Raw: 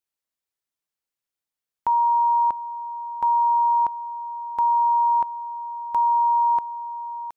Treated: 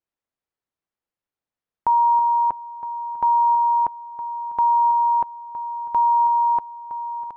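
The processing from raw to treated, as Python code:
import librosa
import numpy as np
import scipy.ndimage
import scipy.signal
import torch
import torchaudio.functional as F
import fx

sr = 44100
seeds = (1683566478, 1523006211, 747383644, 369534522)

y = fx.lowpass(x, sr, hz=1100.0, slope=6)
y = fx.echo_feedback(y, sr, ms=324, feedback_pct=51, wet_db=-13.0)
y = F.gain(torch.from_numpy(y), 5.0).numpy()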